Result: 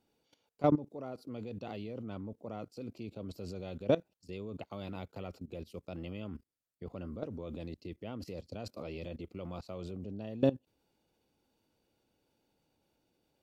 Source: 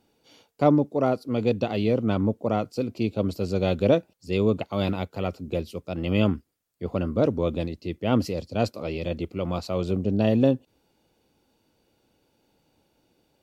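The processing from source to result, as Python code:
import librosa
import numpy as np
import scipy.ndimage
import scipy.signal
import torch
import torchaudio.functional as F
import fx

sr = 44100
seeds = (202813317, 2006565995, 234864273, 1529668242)

y = fx.level_steps(x, sr, step_db=18)
y = y * 10.0 ** (-5.5 / 20.0)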